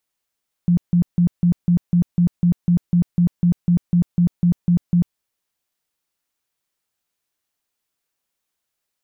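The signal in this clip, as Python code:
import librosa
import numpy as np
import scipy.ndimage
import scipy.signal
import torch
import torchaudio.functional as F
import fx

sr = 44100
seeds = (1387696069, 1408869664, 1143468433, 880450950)

y = fx.tone_burst(sr, hz=174.0, cycles=16, every_s=0.25, bursts=18, level_db=-11.5)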